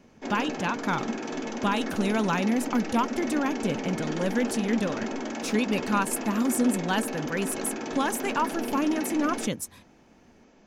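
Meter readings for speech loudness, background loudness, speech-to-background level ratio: −28.5 LKFS, −33.0 LKFS, 4.5 dB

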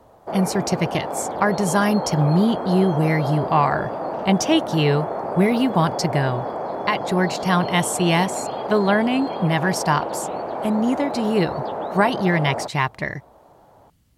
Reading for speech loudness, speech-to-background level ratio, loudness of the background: −21.5 LKFS, 6.5 dB, −28.0 LKFS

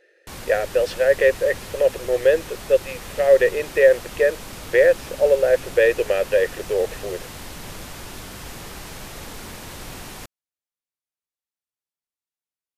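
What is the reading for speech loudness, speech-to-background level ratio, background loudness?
−19.5 LKFS, 16.5 dB, −36.0 LKFS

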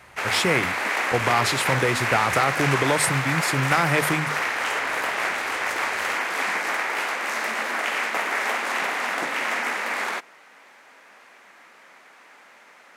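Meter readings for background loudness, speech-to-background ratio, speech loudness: −24.5 LKFS, 0.5 dB, −24.0 LKFS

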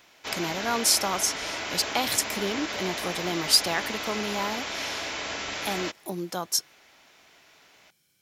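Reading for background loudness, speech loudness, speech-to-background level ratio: −32.0 LKFS, −27.5 LKFS, 4.5 dB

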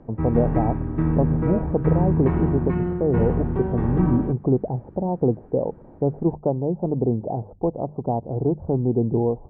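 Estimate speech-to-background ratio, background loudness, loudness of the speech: 0.0 dB, −24.5 LKFS, −24.5 LKFS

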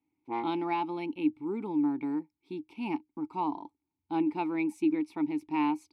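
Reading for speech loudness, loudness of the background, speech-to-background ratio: −32.0 LKFS, −38.5 LKFS, 6.5 dB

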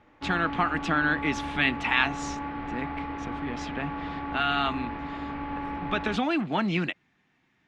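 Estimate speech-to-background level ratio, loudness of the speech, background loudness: 7.0 dB, −28.0 LKFS, −35.0 LKFS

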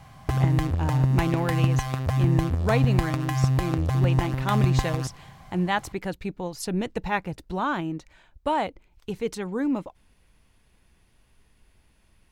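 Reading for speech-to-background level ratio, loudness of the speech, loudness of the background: −5.0 dB, −29.5 LKFS, −24.5 LKFS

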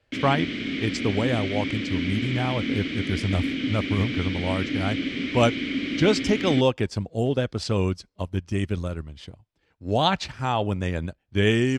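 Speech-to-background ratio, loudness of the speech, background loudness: 2.0 dB, −26.5 LKFS, −28.5 LKFS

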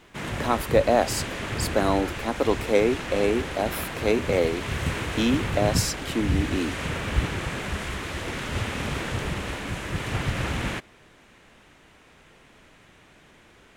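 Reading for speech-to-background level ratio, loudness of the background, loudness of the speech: 4.5 dB, −30.0 LKFS, −25.5 LKFS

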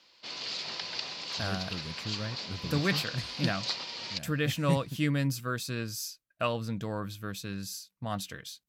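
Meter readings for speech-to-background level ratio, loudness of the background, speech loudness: 2.0 dB, −35.5 LKFS, −33.5 LKFS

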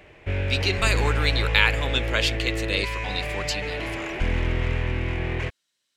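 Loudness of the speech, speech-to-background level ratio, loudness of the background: −25.0 LKFS, 2.5 dB, −27.5 LKFS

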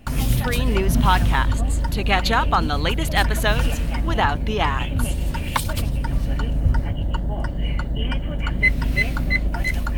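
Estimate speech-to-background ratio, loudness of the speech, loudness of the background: 0.0 dB, −23.5 LKFS, −23.5 LKFS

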